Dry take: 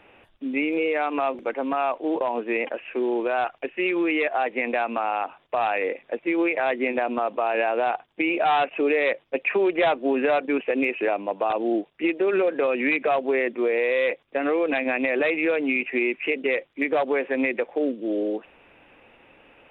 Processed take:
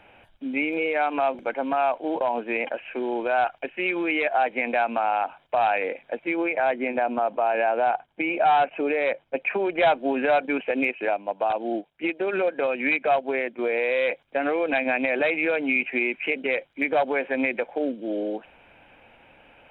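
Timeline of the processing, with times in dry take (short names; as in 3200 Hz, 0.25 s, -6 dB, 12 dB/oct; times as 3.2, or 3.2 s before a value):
6.34–9.78 high shelf 3300 Hz -10.5 dB
10.91–13.59 upward expander, over -35 dBFS
whole clip: comb 1.3 ms, depth 41%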